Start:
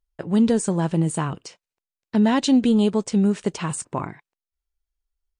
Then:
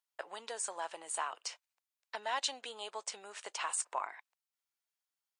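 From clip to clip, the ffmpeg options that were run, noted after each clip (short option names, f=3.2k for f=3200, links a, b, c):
-af "acompressor=threshold=-34dB:ratio=2,highpass=f=690:w=0.5412,highpass=f=690:w=1.3066,volume=1dB"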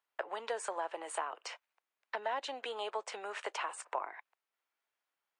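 -filter_complex "[0:a]acrossover=split=290 2800:gain=0.126 1 0.158[a][b][c];[a][b][c]amix=inputs=3:normalize=0,acrossover=split=490[d][e];[e]acompressor=threshold=-47dB:ratio=6[f];[d][f]amix=inputs=2:normalize=0,volume=10dB"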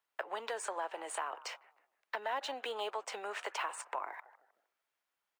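-filter_complex "[0:a]acrossover=split=930|1900[a][b][c];[a]alimiter=level_in=9.5dB:limit=-24dB:level=0:latency=1:release=119,volume=-9.5dB[d];[b]asplit=5[e][f][g][h][i];[f]adelay=154,afreqshift=-87,volume=-11.5dB[j];[g]adelay=308,afreqshift=-174,volume=-20.9dB[k];[h]adelay=462,afreqshift=-261,volume=-30.2dB[l];[i]adelay=616,afreqshift=-348,volume=-39.6dB[m];[e][j][k][l][m]amix=inputs=5:normalize=0[n];[c]acrusher=bits=5:mode=log:mix=0:aa=0.000001[o];[d][n][o]amix=inputs=3:normalize=0,volume=1dB"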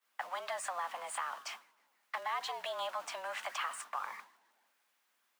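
-af "aeval=exprs='val(0)+0.5*0.00447*sgn(val(0))':c=same,afreqshift=180,agate=range=-33dB:threshold=-40dB:ratio=3:detection=peak,volume=-1dB"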